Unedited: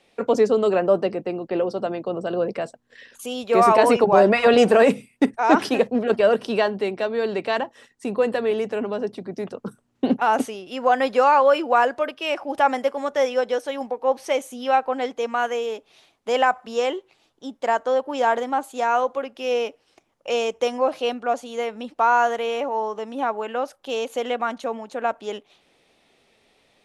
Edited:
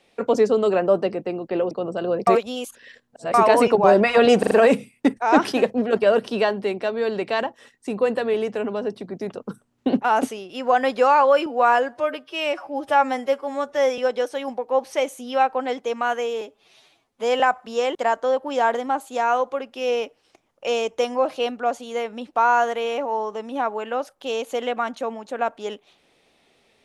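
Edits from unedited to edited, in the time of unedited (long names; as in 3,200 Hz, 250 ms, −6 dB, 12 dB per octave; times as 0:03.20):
0:01.71–0:02.00: remove
0:02.56–0:03.63: reverse
0:04.68: stutter 0.04 s, 4 plays
0:11.63–0:13.31: time-stretch 1.5×
0:15.74–0:16.40: time-stretch 1.5×
0:16.95–0:17.58: remove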